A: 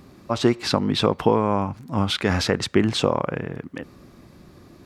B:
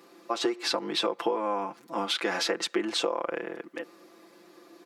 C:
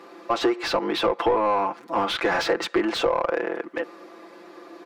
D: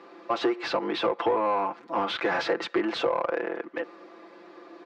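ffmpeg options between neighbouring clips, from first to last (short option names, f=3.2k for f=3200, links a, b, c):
-af "highpass=f=310:w=0.5412,highpass=f=310:w=1.3066,aecho=1:1:5.9:0.88,acompressor=threshold=-20dB:ratio=6,volume=-4dB"
-filter_complex "[0:a]asplit=2[a][b];[b]highpass=f=720:p=1,volume=17dB,asoftclip=type=tanh:threshold=-14dB[c];[a][c]amix=inputs=2:normalize=0,lowpass=f=1.1k:p=1,volume=-6dB,volume=4dB"
-af "highpass=110,lowpass=4.7k,volume=-3.5dB"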